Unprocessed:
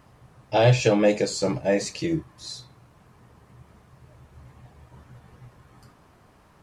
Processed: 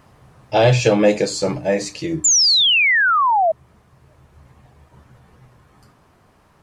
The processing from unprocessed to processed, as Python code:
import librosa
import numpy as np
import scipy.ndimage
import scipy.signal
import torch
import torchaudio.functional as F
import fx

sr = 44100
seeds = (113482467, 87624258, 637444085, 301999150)

y = fx.spec_paint(x, sr, seeds[0], shape='fall', start_s=2.24, length_s=1.28, low_hz=620.0, high_hz=7400.0, level_db=-15.0)
y = fx.hum_notches(y, sr, base_hz=60, count=5)
y = fx.rider(y, sr, range_db=4, speed_s=2.0)
y = F.gain(torch.from_numpy(y), 1.5).numpy()